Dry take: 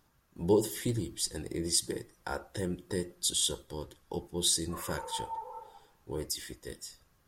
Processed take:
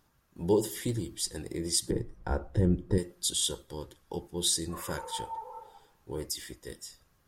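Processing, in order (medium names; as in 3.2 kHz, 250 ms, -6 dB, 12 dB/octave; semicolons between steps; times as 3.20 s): 1.90–2.98 s: tilt EQ -4 dB/octave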